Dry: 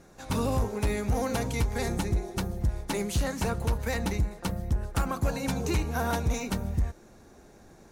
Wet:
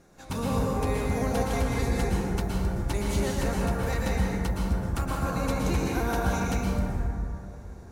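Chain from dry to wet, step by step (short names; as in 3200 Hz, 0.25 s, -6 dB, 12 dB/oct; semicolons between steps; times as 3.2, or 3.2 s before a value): plate-style reverb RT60 2.5 s, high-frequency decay 0.35×, pre-delay 0.105 s, DRR -4 dB; gain -3.5 dB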